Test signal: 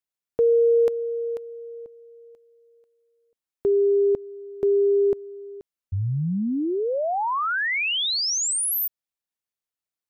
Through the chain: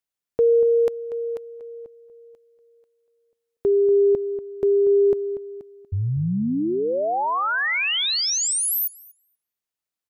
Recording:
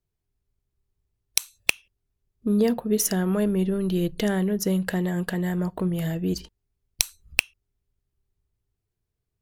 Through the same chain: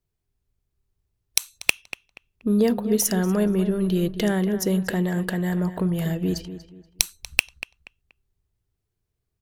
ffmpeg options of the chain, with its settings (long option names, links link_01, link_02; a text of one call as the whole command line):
ffmpeg -i in.wav -filter_complex "[0:a]asplit=2[link_01][link_02];[link_02]adelay=239,lowpass=frequency=3100:poles=1,volume=-12dB,asplit=2[link_03][link_04];[link_04]adelay=239,lowpass=frequency=3100:poles=1,volume=0.31,asplit=2[link_05][link_06];[link_06]adelay=239,lowpass=frequency=3100:poles=1,volume=0.31[link_07];[link_01][link_03][link_05][link_07]amix=inputs=4:normalize=0,volume=1.5dB" out.wav